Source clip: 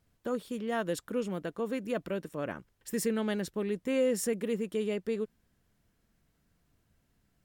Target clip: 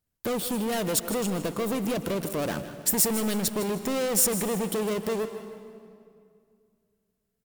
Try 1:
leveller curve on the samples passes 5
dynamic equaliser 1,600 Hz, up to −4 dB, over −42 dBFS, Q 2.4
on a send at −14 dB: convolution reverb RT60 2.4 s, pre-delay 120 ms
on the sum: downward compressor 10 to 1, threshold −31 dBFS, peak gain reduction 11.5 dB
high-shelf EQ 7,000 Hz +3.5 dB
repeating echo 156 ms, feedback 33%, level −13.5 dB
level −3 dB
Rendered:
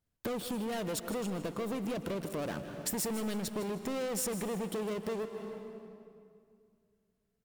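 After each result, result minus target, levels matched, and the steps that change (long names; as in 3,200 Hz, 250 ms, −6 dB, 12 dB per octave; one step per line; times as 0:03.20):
downward compressor: peak gain reduction +7.5 dB; 8,000 Hz band −3.0 dB
change: downward compressor 10 to 1, threshold −22.5 dBFS, peak gain reduction 3.5 dB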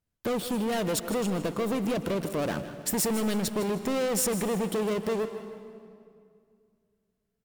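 8,000 Hz band −3.5 dB
change: high-shelf EQ 7,000 Hz +13 dB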